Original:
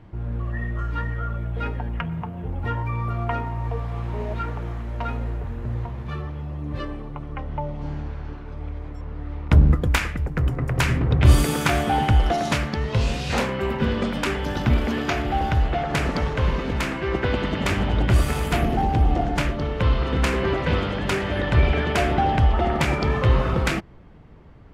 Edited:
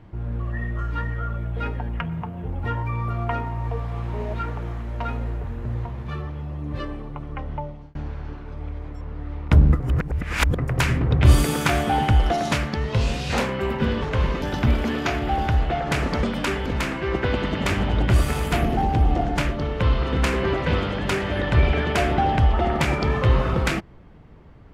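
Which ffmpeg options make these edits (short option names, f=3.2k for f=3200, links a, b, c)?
-filter_complex "[0:a]asplit=8[a][b][c][d][e][f][g][h];[a]atrim=end=7.95,asetpts=PTS-STARTPTS,afade=t=out:st=7.51:d=0.44[i];[b]atrim=start=7.95:end=9.802,asetpts=PTS-STARTPTS,afade=t=in:d=0.004:c=hsin[j];[c]atrim=start=9.798:end=10.582,asetpts=PTS-STARTPTS,areverse[k];[d]atrim=start=10.578:end=14.022[l];[e]atrim=start=16.258:end=16.662[m];[f]atrim=start=14.448:end=16.262[n];[g]atrim=start=14.018:end=14.452[o];[h]atrim=start=16.658[p];[i][j]concat=n=2:v=0:a=1[q];[q][k]acrossfade=d=0.004:c1=hsin:c2=hsin[r];[r][l]acrossfade=d=0.004:c1=hsin:c2=hsin[s];[s][m]acrossfade=d=0.004:c1=hsin:c2=hsin[t];[t][n]acrossfade=d=0.004:c1=hsin:c2=hsin[u];[u][o]acrossfade=d=0.004:c1=hsin:c2=hsin[v];[v][p]acrossfade=d=0.004:c1=hsin:c2=hsin"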